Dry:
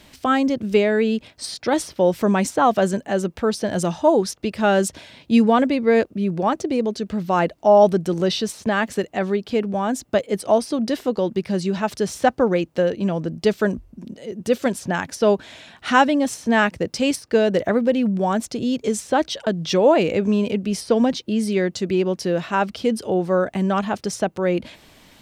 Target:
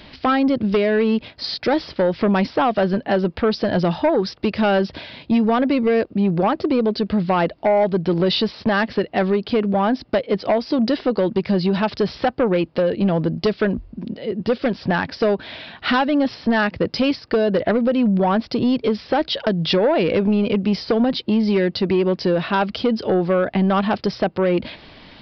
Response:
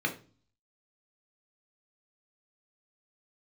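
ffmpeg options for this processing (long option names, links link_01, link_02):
-af "acompressor=threshold=-19dB:ratio=6,aresample=11025,aeval=exprs='0.251*sin(PI/2*1.41*val(0)/0.251)':channel_layout=same,aresample=44100"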